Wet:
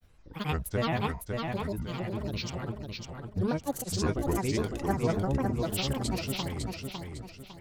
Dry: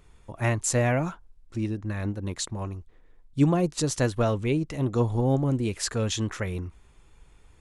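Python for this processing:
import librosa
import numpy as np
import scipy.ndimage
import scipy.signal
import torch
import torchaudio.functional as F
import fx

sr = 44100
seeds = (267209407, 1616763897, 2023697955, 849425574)

y = fx.granulator(x, sr, seeds[0], grain_ms=100.0, per_s=20.0, spray_ms=100.0, spread_st=12)
y = fx.echo_feedback(y, sr, ms=554, feedback_pct=36, wet_db=-4.5)
y = y * librosa.db_to_amplitude(-4.5)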